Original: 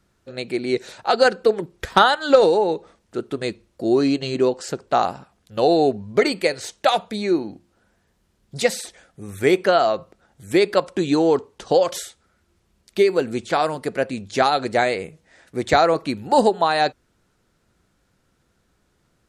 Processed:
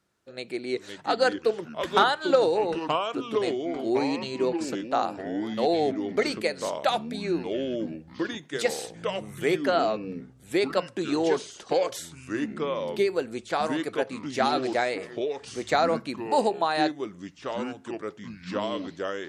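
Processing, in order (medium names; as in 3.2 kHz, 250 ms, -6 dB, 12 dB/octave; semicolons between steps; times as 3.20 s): high-pass 230 Hz 6 dB/octave; ever faster or slower copies 415 ms, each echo -4 st, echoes 3, each echo -6 dB; on a send: reverberation RT60 0.20 s, pre-delay 6 ms, DRR 23 dB; on the sum: trim -6.5 dB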